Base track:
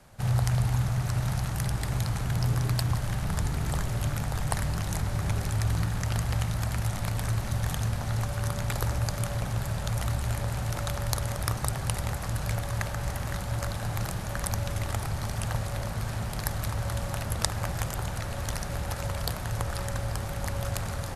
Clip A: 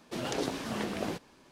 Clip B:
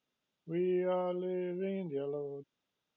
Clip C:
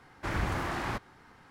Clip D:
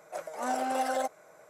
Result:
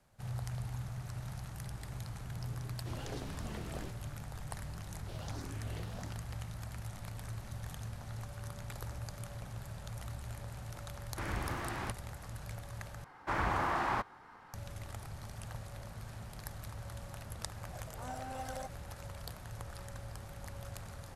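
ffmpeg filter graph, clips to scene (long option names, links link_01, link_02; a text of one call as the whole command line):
ffmpeg -i bed.wav -i cue0.wav -i cue1.wav -i cue2.wav -i cue3.wav -filter_complex "[1:a]asplit=2[link_01][link_02];[3:a]asplit=2[link_03][link_04];[0:a]volume=-14.5dB[link_05];[link_02]asplit=2[link_06][link_07];[link_07]afreqshift=1.4[link_08];[link_06][link_08]amix=inputs=2:normalize=1[link_09];[link_04]equalizer=frequency=960:width=0.85:gain=10[link_10];[link_05]asplit=2[link_11][link_12];[link_11]atrim=end=13.044[link_13];[link_10]atrim=end=1.5,asetpts=PTS-STARTPTS,volume=-5.5dB[link_14];[link_12]atrim=start=14.536[link_15];[link_01]atrim=end=1.51,asetpts=PTS-STARTPTS,volume=-12dB,afade=type=in:duration=0.004:curve=hsin,afade=type=out:start_time=1.506:duration=0.004:curve=hsin,adelay=2740[link_16];[link_09]atrim=end=1.51,asetpts=PTS-STARTPTS,volume=-11.5dB,afade=type=in:duration=0.004:curve=hsin,afade=type=out:start_time=1.506:duration=0.004:curve=hsin,adelay=4960[link_17];[link_03]atrim=end=1.5,asetpts=PTS-STARTPTS,volume=-6.5dB,afade=type=in:duration=0.004:curve=hsin,afade=type=out:start_time=1.496:duration=0.004:curve=hsin,adelay=10940[link_18];[4:a]atrim=end=1.49,asetpts=PTS-STARTPTS,volume=-13.5dB,afade=type=in:duration=0.004:curve=hsin,afade=type=out:start_time=1.486:duration=0.004:curve=hsin,adelay=17600[link_19];[link_13][link_14]acrossfade=duration=0.004:curve1=hsin:curve2=hsin[link_20];[link_20][link_15]acrossfade=duration=0.004:curve1=hsin:curve2=hsin[link_21];[link_21][link_16][link_17][link_18][link_19]amix=inputs=5:normalize=0" out.wav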